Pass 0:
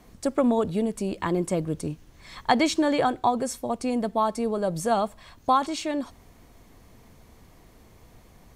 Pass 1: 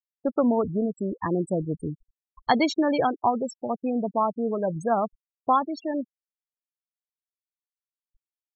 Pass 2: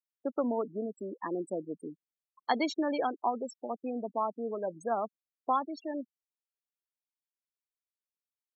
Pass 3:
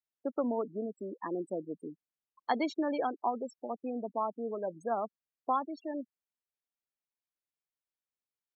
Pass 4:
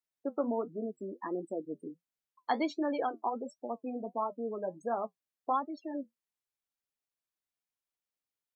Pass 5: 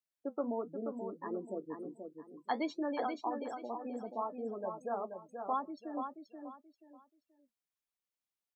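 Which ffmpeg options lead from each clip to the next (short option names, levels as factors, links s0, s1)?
-af "afftfilt=real='re*gte(hypot(re,im),0.0708)':imag='im*gte(hypot(re,im),0.0708)':win_size=1024:overlap=0.75"
-af "highpass=f=240:w=0.5412,highpass=f=240:w=1.3066,volume=0.422"
-af "highshelf=f=3500:g=-9,volume=0.891"
-af "flanger=delay=6.9:depth=4.4:regen=-55:speed=1.4:shape=triangular,volume=1.5"
-af "aecho=1:1:481|962|1443:0.473|0.128|0.0345,volume=0.631"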